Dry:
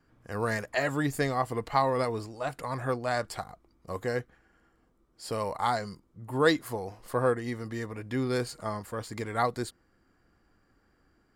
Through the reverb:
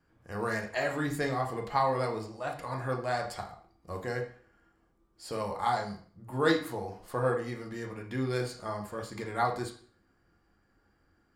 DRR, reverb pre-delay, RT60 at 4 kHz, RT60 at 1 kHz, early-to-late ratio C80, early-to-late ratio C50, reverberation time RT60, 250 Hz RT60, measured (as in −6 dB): 1.0 dB, 5 ms, 0.45 s, 0.50 s, 13.5 dB, 9.5 dB, 0.50 s, 0.50 s